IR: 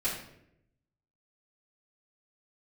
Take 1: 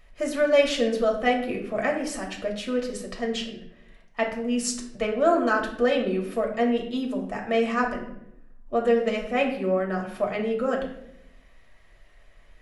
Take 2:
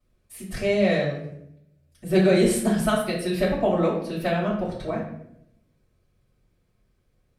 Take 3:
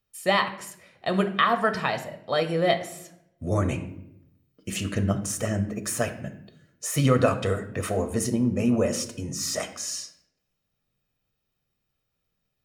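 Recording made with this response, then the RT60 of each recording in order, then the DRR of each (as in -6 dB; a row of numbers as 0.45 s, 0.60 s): 2; 0.75 s, 0.75 s, 0.80 s; -0.5 dB, -10.5 dB, 6.0 dB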